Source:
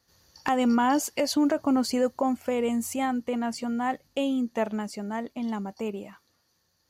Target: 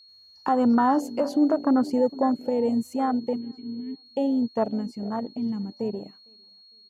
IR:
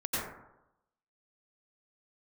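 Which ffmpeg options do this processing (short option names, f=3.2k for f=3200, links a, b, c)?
-filter_complex "[0:a]asettb=1/sr,asplit=3[a][b][c];[a]atrim=end=3.364[d];[b]atrim=start=3.36:end=4.06,asetpts=PTS-STARTPTS,afade=t=in:d=0.004:c=qsin,afade=t=out:st=0.696:d=0.004:c=qsin,asplit=3[e][f][g];[e]bandpass=f=270:t=q:w=8,volume=0dB[h];[f]bandpass=f=2.29k:t=q:w=8,volume=-6dB[i];[g]bandpass=f=3.01k:t=q:w=8,volume=-9dB[j];[h][i][j]amix=inputs=3:normalize=0[k];[c]atrim=start=4.056[l];[d][k]acrossfade=d=0.004:c1=hsin:c2=qsin[m];[m][l]acrossfade=d=0.004:c1=qsin:c2=hsin,bandreject=f=287.8:t=h:w=4,bandreject=f=575.6:t=h:w=4,bandreject=f=863.4:t=h:w=4,asplit=2[n][o];[o]adelay=455,lowpass=f=1k:p=1,volume=-17dB,asplit=2[p][q];[q]adelay=455,lowpass=f=1k:p=1,volume=0.35,asplit=2[r][s];[s]adelay=455,lowpass=f=1k:p=1,volume=0.35[t];[p][r][t]amix=inputs=3:normalize=0[u];[n][u]amix=inputs=2:normalize=0,aeval=exprs='val(0)+0.0141*sin(2*PI*4300*n/s)':c=same,acontrast=50,afwtdn=0.0794,volume=-3dB"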